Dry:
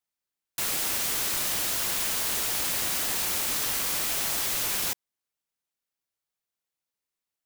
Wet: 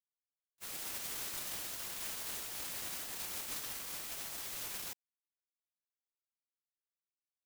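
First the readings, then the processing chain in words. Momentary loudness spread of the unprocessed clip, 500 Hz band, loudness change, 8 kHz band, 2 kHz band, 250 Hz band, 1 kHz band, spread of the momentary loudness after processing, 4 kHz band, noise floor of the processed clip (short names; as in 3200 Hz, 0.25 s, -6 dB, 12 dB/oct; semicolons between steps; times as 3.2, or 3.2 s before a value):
3 LU, -14.5 dB, -14.5 dB, -14.5 dB, -14.5 dB, -14.0 dB, -14.5 dB, 3 LU, -14.5 dB, under -85 dBFS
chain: gate -24 dBFS, range -56 dB; gain +8 dB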